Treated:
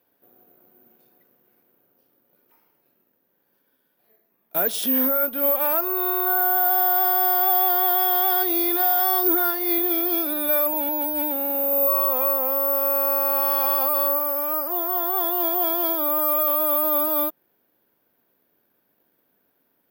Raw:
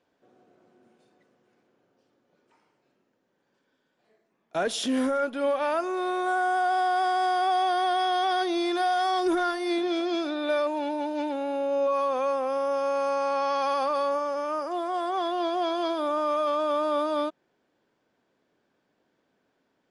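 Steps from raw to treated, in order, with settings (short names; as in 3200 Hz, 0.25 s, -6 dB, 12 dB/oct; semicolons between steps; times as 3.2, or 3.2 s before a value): careless resampling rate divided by 3×, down filtered, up zero stuff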